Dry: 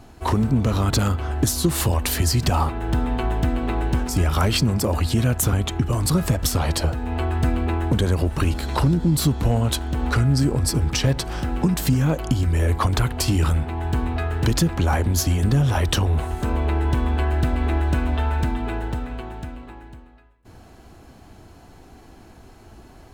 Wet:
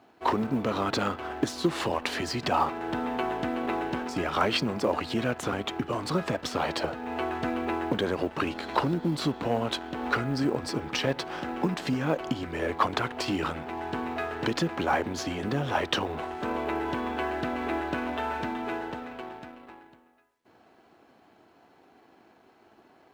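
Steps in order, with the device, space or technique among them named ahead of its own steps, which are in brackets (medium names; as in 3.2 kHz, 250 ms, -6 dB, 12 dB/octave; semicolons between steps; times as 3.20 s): phone line with mismatched companding (band-pass 300–3400 Hz; companding laws mixed up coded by A)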